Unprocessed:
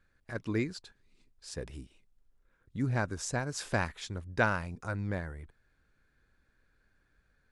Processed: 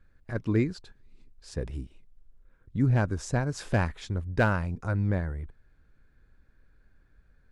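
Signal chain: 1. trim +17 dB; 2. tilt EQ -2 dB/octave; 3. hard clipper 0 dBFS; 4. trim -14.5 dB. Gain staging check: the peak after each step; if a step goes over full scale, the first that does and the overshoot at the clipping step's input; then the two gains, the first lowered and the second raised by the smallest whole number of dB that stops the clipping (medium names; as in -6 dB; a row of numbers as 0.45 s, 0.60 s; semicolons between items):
+4.5 dBFS, +5.5 dBFS, 0.0 dBFS, -14.5 dBFS; step 1, 5.5 dB; step 1 +11 dB, step 4 -8.5 dB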